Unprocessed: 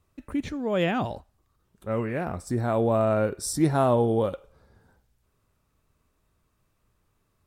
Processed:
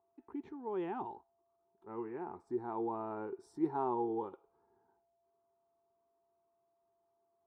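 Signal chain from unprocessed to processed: whistle 680 Hz -57 dBFS; two resonant band-passes 580 Hz, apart 1.2 oct; trim -2.5 dB

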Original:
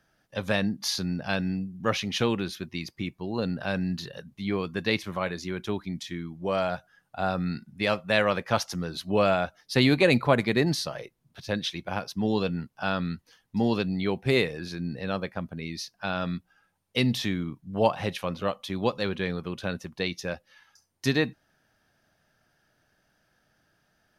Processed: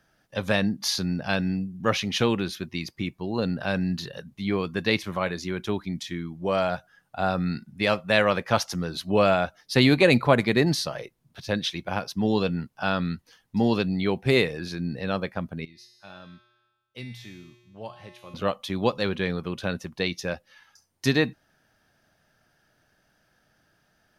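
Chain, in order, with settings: 15.65–18.34 s: feedback comb 120 Hz, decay 1.2 s, harmonics odd, mix 90%; trim +2.5 dB

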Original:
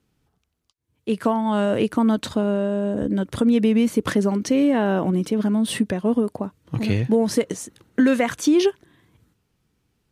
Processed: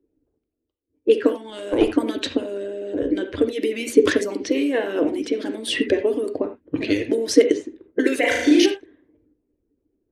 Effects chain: coarse spectral quantiser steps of 15 dB; level-controlled noise filter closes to 570 Hz, open at -16 dBFS; high-order bell 990 Hz -10.5 dB 1.2 oct; hum notches 60/120/180/240 Hz; harmonic-percussive split harmonic -16 dB; resonant low shelf 240 Hz -8 dB, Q 3; 1.50–1.94 s: valve stage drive 13 dB, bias 0.55; 8.19–8.66 s: flutter echo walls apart 6.4 m, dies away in 0.94 s; reverberation, pre-delay 3 ms, DRR 6 dB; trim +7 dB

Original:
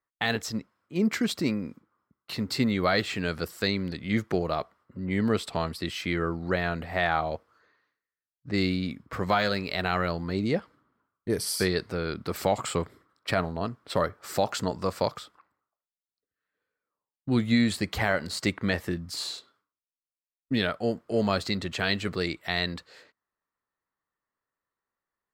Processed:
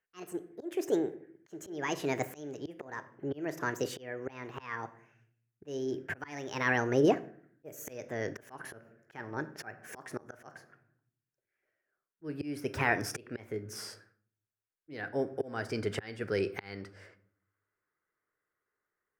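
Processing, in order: gliding tape speed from 158% -> 106%; simulated room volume 640 m³, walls furnished, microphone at 0.52 m; slow attack 644 ms; fifteen-band graphic EQ 100 Hz +6 dB, 400 Hz +12 dB, 1.6 kHz +10 dB, 4 kHz -8 dB; trim -3.5 dB

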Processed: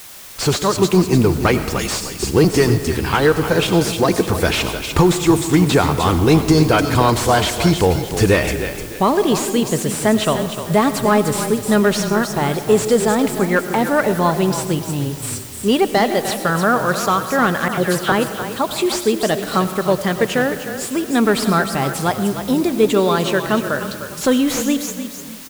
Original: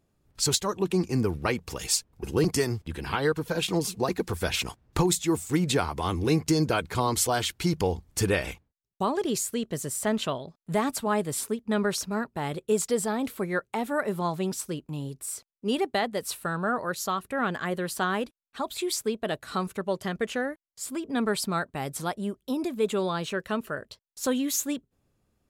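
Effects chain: waveshaping leveller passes 1; in parallel at -6 dB: word length cut 6-bit, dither triangular; 17.68–18.12 s: on the sum: phase dispersion lows, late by 97 ms, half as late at 2.5 kHz; on a send: frequency-shifting echo 302 ms, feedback 33%, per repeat -34 Hz, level -10.5 dB; on the sum: algorithmic reverb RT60 1.7 s, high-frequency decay 0.4×, pre-delay 55 ms, DRR 11.5 dB; slew-rate limiter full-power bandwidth 280 Hz; trim +4.5 dB

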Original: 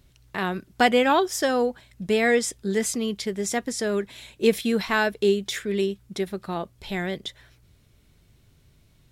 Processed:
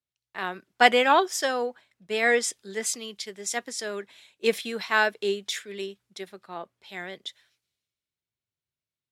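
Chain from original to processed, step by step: frequency weighting A; three bands expanded up and down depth 70%; trim -2 dB

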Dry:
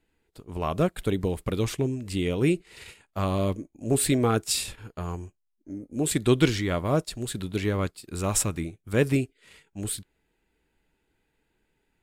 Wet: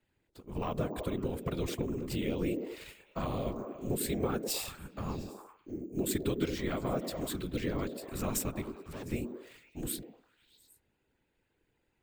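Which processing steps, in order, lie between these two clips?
compression 5:1, threshold -26 dBFS, peak gain reduction 11 dB; 8.62–9.05 s: hard clipper -37 dBFS, distortion -16 dB; whisper effect; repeats whose band climbs or falls 101 ms, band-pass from 290 Hz, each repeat 0.7 oct, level -3 dB; careless resampling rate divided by 2×, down filtered, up hold; trim -4.5 dB

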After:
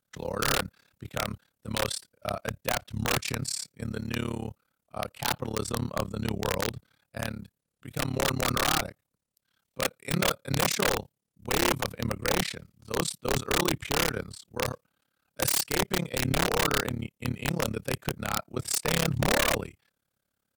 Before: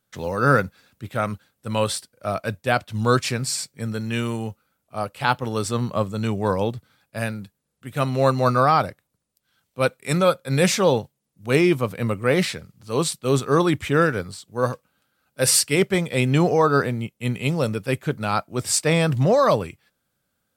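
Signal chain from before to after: AM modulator 35 Hz, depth 100%; integer overflow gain 14.5 dB; trim -2.5 dB

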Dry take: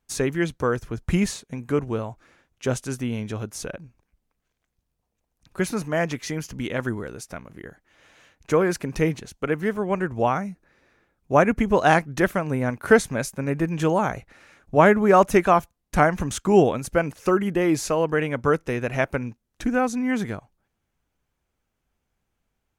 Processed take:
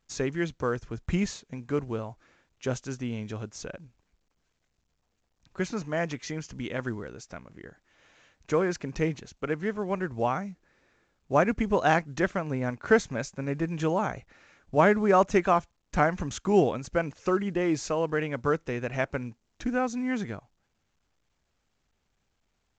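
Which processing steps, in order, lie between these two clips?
trim -5.5 dB; µ-law 128 kbps 16 kHz

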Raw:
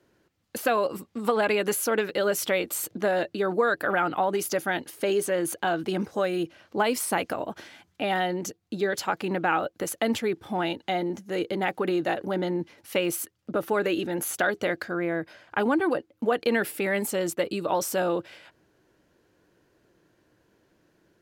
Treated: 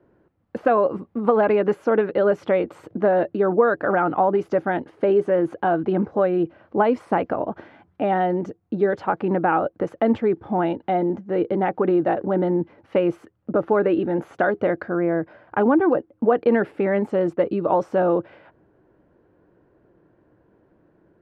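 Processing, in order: low-pass 1.1 kHz 12 dB/octave; trim +7 dB

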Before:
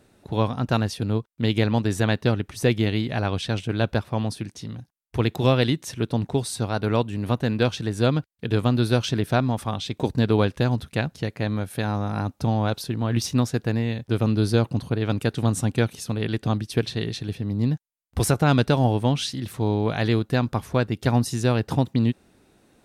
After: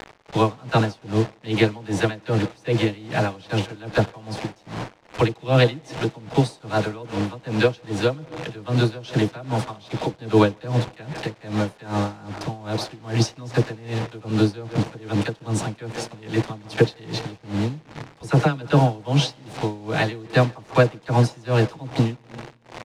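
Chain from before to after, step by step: bass shelf 210 Hz -3.5 dB; band-stop 3.4 kHz, Q 23; comb 6.3 ms, depth 51%; phase dispersion lows, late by 44 ms, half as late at 610 Hz; band noise 320–950 Hz -42 dBFS; bit crusher 6-bit; distance through air 87 m; speakerphone echo 150 ms, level -15 dB; reverberation RT60 4.4 s, pre-delay 39 ms, DRR 17 dB; logarithmic tremolo 2.5 Hz, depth 23 dB; trim +7 dB

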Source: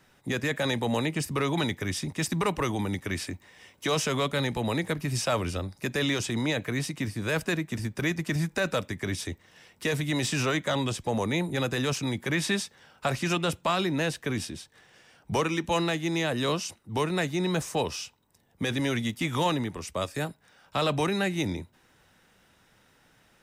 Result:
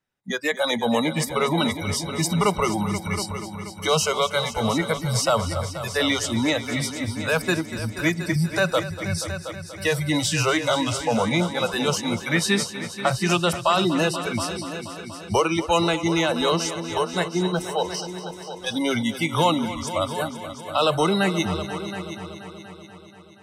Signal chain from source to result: 16.83–18.67 s: level held to a coarse grid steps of 9 dB; spectral noise reduction 29 dB; multi-head delay 240 ms, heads all three, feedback 48%, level -14.5 dB; trim +7 dB

